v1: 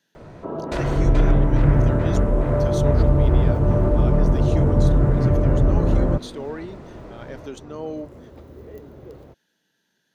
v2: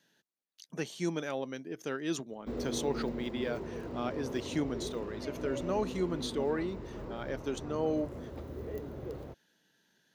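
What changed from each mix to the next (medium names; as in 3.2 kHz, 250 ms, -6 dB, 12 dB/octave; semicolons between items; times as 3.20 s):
first sound: muted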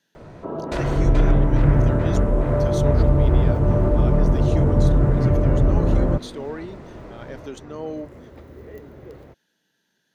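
first sound: unmuted; second sound: add peaking EQ 1.9 kHz +6.5 dB 0.83 oct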